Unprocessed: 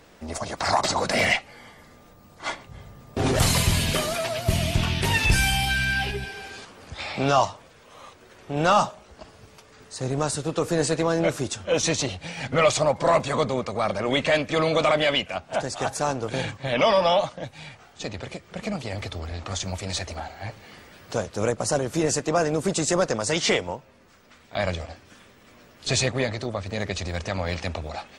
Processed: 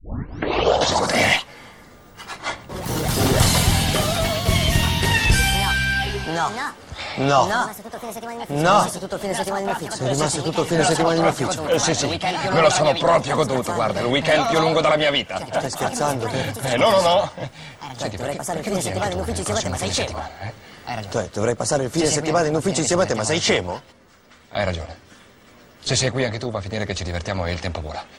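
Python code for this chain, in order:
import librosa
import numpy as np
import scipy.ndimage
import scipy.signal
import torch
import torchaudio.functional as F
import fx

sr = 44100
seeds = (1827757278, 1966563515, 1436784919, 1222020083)

y = fx.tape_start_head(x, sr, length_s=1.04)
y = fx.echo_pitch(y, sr, ms=227, semitones=3, count=2, db_per_echo=-6.0)
y = fx.notch(y, sr, hz=2500.0, q=13.0)
y = y * 10.0 ** (3.5 / 20.0)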